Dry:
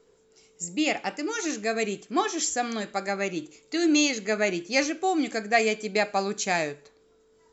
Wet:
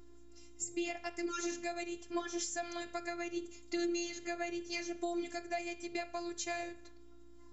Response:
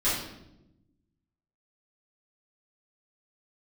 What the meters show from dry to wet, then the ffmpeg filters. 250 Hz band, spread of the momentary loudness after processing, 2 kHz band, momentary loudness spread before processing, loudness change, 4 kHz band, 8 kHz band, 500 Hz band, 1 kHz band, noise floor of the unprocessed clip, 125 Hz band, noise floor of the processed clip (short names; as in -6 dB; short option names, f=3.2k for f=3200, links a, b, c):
-11.5 dB, 4 LU, -14.5 dB, 8 LU, -12.5 dB, -13.5 dB, n/a, -12.5 dB, -14.0 dB, -62 dBFS, under -15 dB, -53 dBFS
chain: -af "acompressor=threshold=-32dB:ratio=10,aeval=exprs='val(0)+0.00355*(sin(2*PI*60*n/s)+sin(2*PI*2*60*n/s)/2+sin(2*PI*3*60*n/s)/3+sin(2*PI*4*60*n/s)/4+sin(2*PI*5*60*n/s)/5)':c=same,afftfilt=real='hypot(re,im)*cos(PI*b)':imag='0':win_size=512:overlap=0.75"